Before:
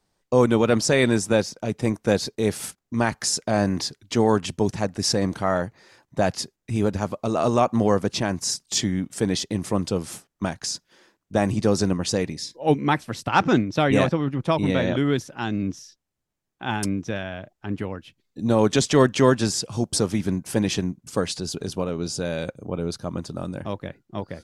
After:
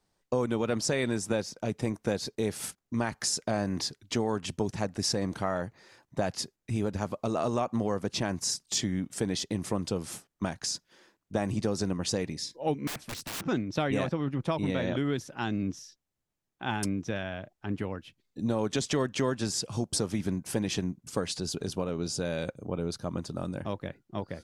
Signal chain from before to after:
downward compressor 4 to 1, threshold −22 dBFS, peak gain reduction 9.5 dB
0:12.87–0:13.44: wrap-around overflow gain 28 dB
level −3.5 dB

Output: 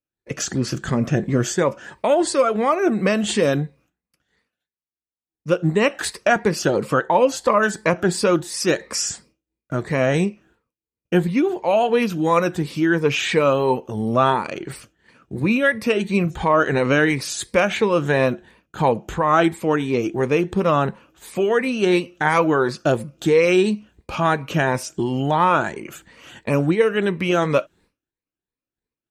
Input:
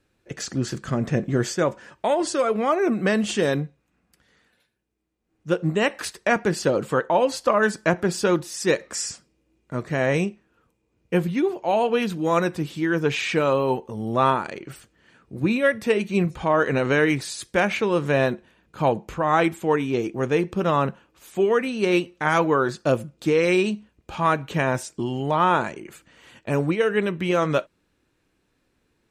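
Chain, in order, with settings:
rippled gain that drifts along the octave scale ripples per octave 0.92, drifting +2.9 Hz, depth 8 dB
downward expander −50 dBFS
in parallel at +0.5 dB: downward compressor, threshold −29 dBFS, peak gain reduction 15.5 dB

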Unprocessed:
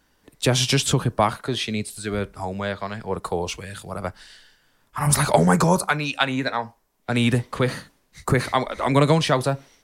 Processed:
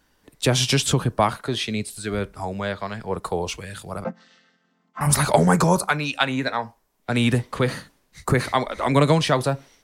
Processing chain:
0:04.04–0:05.01: channel vocoder with a chord as carrier major triad, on F3

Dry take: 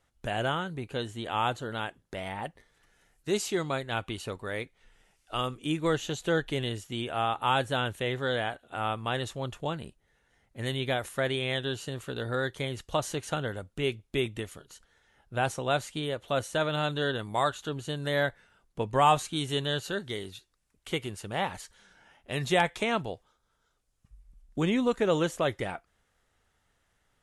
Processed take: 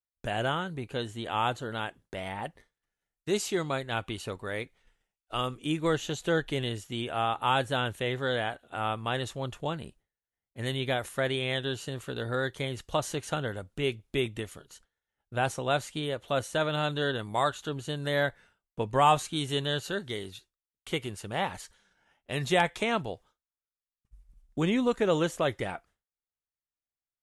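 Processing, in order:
downward expander −51 dBFS

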